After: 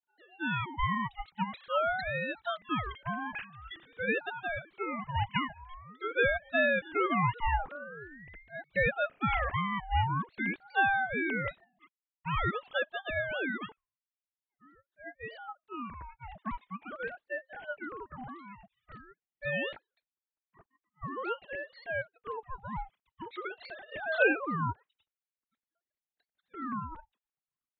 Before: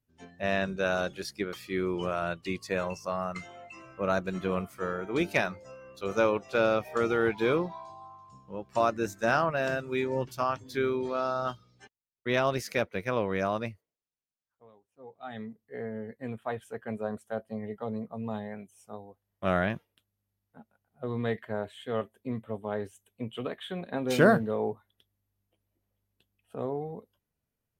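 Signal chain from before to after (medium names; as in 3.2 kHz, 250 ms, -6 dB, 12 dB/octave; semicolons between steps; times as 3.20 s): formants replaced by sine waves; ring modulator with a swept carrier 790 Hz, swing 50%, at 0.46 Hz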